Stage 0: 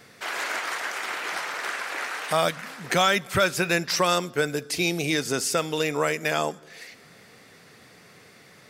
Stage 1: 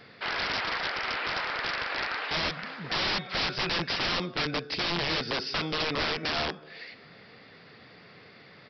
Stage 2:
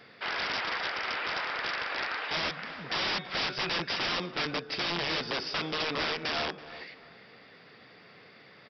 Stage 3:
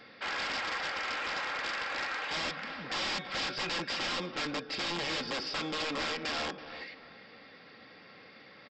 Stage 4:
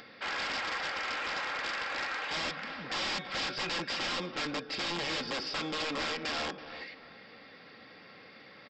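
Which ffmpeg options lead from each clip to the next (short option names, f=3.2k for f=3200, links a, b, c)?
-af "bandreject=f=368.9:t=h:w=4,bandreject=f=737.8:t=h:w=4,bandreject=f=1.1067k:t=h:w=4,bandreject=f=1.4756k:t=h:w=4,bandreject=f=1.8445k:t=h:w=4,bandreject=f=2.2134k:t=h:w=4,bandreject=f=2.5823k:t=h:w=4,bandreject=f=2.9512k:t=h:w=4,bandreject=f=3.3201k:t=h:w=4,bandreject=f=3.689k:t=h:w=4,bandreject=f=4.0579k:t=h:w=4,bandreject=f=4.4268k:t=h:w=4,bandreject=f=4.7957k:t=h:w=4,bandreject=f=5.1646k:t=h:w=4,bandreject=f=5.5335k:t=h:w=4,bandreject=f=5.9024k:t=h:w=4,bandreject=f=6.2713k:t=h:w=4,bandreject=f=6.6402k:t=h:w=4,bandreject=f=7.0091k:t=h:w=4,bandreject=f=7.378k:t=h:w=4,bandreject=f=7.7469k:t=h:w=4,bandreject=f=8.1158k:t=h:w=4,bandreject=f=8.4847k:t=h:w=4,bandreject=f=8.8536k:t=h:w=4,bandreject=f=9.2225k:t=h:w=4,bandreject=f=9.5914k:t=h:w=4,bandreject=f=9.9603k:t=h:w=4,bandreject=f=10.3292k:t=h:w=4,bandreject=f=10.6981k:t=h:w=4,bandreject=f=11.067k:t=h:w=4,bandreject=f=11.4359k:t=h:w=4,bandreject=f=11.8048k:t=h:w=4,bandreject=f=12.1737k:t=h:w=4,bandreject=f=12.5426k:t=h:w=4,aresample=11025,aeval=exprs='(mod(14.1*val(0)+1,2)-1)/14.1':c=same,aresample=44100"
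-filter_complex "[0:a]lowshelf=f=130:g=-9,bandreject=f=4.2k:w=17,asplit=2[a][b];[b]adelay=329,lowpass=f=2k:p=1,volume=-14.5dB,asplit=2[c][d];[d]adelay=329,lowpass=f=2k:p=1,volume=0.33,asplit=2[e][f];[f]adelay=329,lowpass=f=2k:p=1,volume=0.33[g];[a][c][e][g]amix=inputs=4:normalize=0,volume=-1.5dB"
-af "aecho=1:1:3.7:0.37,aresample=16000,asoftclip=type=tanh:threshold=-29.5dB,aresample=44100"
-af "acompressor=mode=upward:threshold=-49dB:ratio=2.5"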